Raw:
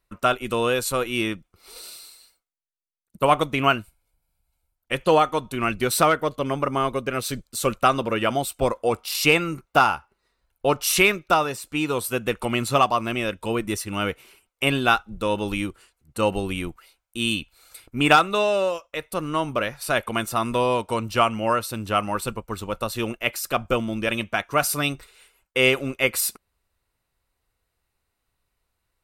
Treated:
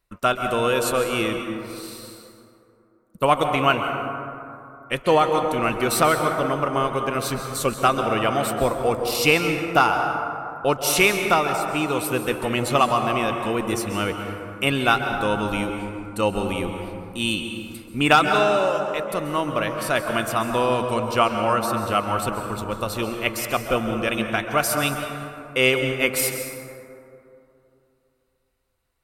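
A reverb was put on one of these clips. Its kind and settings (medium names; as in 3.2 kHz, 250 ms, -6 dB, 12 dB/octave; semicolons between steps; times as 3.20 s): plate-style reverb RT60 2.8 s, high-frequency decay 0.35×, pre-delay 120 ms, DRR 4.5 dB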